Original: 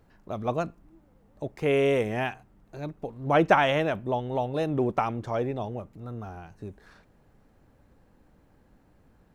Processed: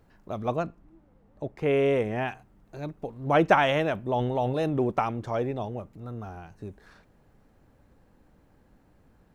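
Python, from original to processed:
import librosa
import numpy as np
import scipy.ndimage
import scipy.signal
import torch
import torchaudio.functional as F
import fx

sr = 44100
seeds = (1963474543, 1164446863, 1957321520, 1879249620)

y = fx.high_shelf(x, sr, hz=fx.line((0.55, 5900.0), (2.27, 3600.0)), db=-10.5, at=(0.55, 2.27), fade=0.02)
y = fx.sustainer(y, sr, db_per_s=28.0, at=(4.09, 4.77))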